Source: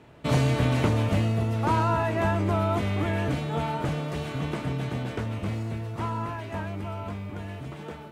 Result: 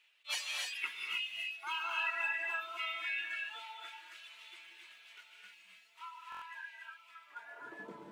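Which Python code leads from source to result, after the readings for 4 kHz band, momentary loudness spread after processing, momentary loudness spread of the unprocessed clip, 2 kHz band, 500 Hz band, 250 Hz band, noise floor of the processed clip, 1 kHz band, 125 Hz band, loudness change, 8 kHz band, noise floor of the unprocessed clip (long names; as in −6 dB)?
−1.0 dB, 20 LU, 12 LU, −1.5 dB, −26.5 dB, below −30 dB, −63 dBFS, −14.5 dB, below −40 dB, −10.5 dB, −4.0 dB, −41 dBFS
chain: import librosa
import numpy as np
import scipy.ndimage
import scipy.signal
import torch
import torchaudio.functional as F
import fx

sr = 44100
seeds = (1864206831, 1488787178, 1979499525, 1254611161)

p1 = fx.law_mismatch(x, sr, coded='mu')
p2 = fx.dereverb_blind(p1, sr, rt60_s=1.9)
p3 = fx.peak_eq(p2, sr, hz=79.0, db=-8.5, octaves=2.4)
p4 = fx.noise_reduce_blind(p3, sr, reduce_db=17)
p5 = p4 + fx.echo_feedback(p4, sr, ms=789, feedback_pct=53, wet_db=-20.5, dry=0)
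p6 = fx.filter_sweep_highpass(p5, sr, from_hz=2700.0, to_hz=120.0, start_s=7.08, end_s=8.07, q=2.8)
p7 = fx.low_shelf(p6, sr, hz=420.0, db=4.5)
p8 = fx.rev_gated(p7, sr, seeds[0], gate_ms=320, shape='rising', drr_db=0.0)
p9 = fx.buffer_glitch(p8, sr, at_s=(6.3,), block=1024, repeats=4)
y = fx.attack_slew(p9, sr, db_per_s=420.0)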